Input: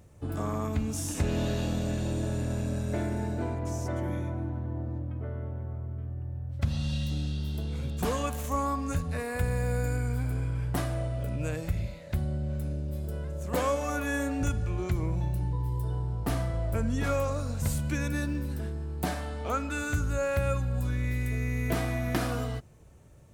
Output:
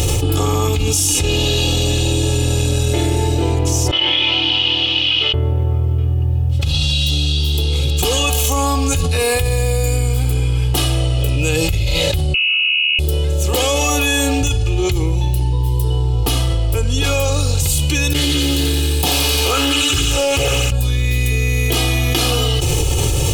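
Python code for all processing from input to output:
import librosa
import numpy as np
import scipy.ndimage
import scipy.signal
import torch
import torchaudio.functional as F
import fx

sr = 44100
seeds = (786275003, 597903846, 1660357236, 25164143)

y = fx.chain(x, sr, fx.delta_mod(bps=64000, step_db=-48.0),
    fx.bandpass_q(hz=3000.0, q=5.3),
    fx.air_absorb(metres=270.0), at=(3.91, 5.34))
y = fx.chain(y, sr, fx.highpass(hz=150.0, slope=6),
    fx.freq_invert(carrier_hz=2800), at=(12.34, 12.99))
y = fx.chain(y, sr, fx.comb_fb(f0_hz=140.0, decay_s=1.6, harmonics='all', damping=0.0, mix_pct=90),
    fx.echo_wet_highpass(ms=87, feedback_pct=82, hz=1600.0, wet_db=-4.5),
    fx.doppler_dist(depth_ms=0.66), at=(18.13, 20.72))
y = fx.high_shelf_res(y, sr, hz=2300.0, db=8.0, q=3.0)
y = y + 0.78 * np.pad(y, (int(2.4 * sr / 1000.0), 0))[:len(y)]
y = fx.env_flatten(y, sr, amount_pct=100)
y = y * librosa.db_to_amplitude(3.5)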